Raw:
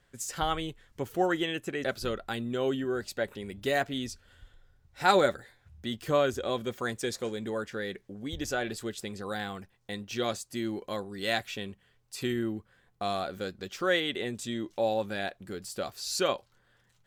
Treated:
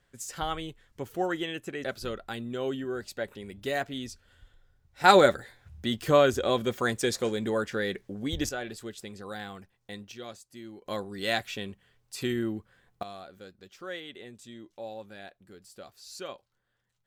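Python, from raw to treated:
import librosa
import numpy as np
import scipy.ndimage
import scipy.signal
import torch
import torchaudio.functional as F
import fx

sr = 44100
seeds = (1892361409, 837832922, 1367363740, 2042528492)

y = fx.gain(x, sr, db=fx.steps((0.0, -2.5), (5.04, 5.0), (8.49, -4.0), (10.12, -11.5), (10.86, 1.0), (13.03, -12.0)))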